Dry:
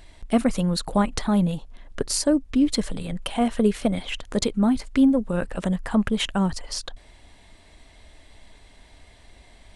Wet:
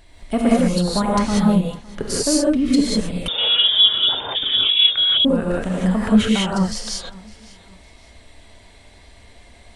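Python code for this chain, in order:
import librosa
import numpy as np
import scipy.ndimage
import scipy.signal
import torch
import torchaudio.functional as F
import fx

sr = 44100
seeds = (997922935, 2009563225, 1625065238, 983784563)

y = fx.echo_feedback(x, sr, ms=558, feedback_pct=35, wet_db=-22.0)
y = fx.rev_gated(y, sr, seeds[0], gate_ms=220, shape='rising', drr_db=-5.5)
y = fx.freq_invert(y, sr, carrier_hz=3600, at=(3.28, 5.25))
y = F.gain(torch.from_numpy(y), -1.5).numpy()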